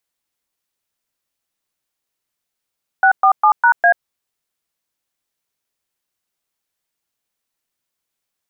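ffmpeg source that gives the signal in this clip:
-f lavfi -i "aevalsrc='0.299*clip(min(mod(t,0.202),0.086-mod(t,0.202))/0.002,0,1)*(eq(floor(t/0.202),0)*(sin(2*PI*770*mod(t,0.202))+sin(2*PI*1477*mod(t,0.202)))+eq(floor(t/0.202),1)*(sin(2*PI*770*mod(t,0.202))+sin(2*PI*1209*mod(t,0.202)))+eq(floor(t/0.202),2)*(sin(2*PI*852*mod(t,0.202))+sin(2*PI*1209*mod(t,0.202)))+eq(floor(t/0.202),3)*(sin(2*PI*941*mod(t,0.202))+sin(2*PI*1477*mod(t,0.202)))+eq(floor(t/0.202),4)*(sin(2*PI*697*mod(t,0.202))+sin(2*PI*1633*mod(t,0.202))))':d=1.01:s=44100"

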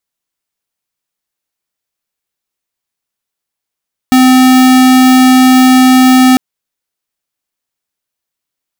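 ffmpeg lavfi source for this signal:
-f lavfi -i "aevalsrc='0.562*(2*lt(mod(257*t,1),0.5)-1)':d=2.25:s=44100"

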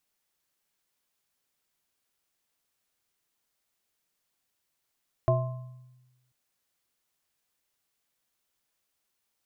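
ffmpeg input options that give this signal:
-f lavfi -i "aevalsrc='0.0841*pow(10,-3*t/1.19)*sin(2*PI*126*t)+0.0376*pow(10,-3*t/0.35)*sin(2*PI*362*t)+0.1*pow(10,-3*t/0.59)*sin(2*PI*652*t)+0.0299*pow(10,-3*t/0.74)*sin(2*PI*1050*t)':d=1.04:s=44100"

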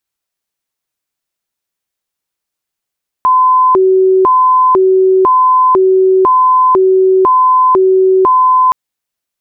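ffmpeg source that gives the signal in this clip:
-f lavfi -i "aevalsrc='0.562*sin(2*PI*(698.5*t+321.5/1*(0.5-abs(mod(1*t,1)-0.5))))':d=5.47:s=44100"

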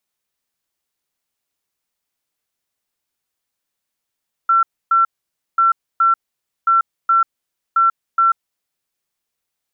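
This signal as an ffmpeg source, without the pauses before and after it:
-f lavfi -i "aevalsrc='0.316*sin(2*PI*1350*t)*clip(min(mod(mod(t,1.09),0.42),0.14-mod(mod(t,1.09),0.42))/0.005,0,1)*lt(mod(t,1.09),0.84)':d=4.36:s=44100"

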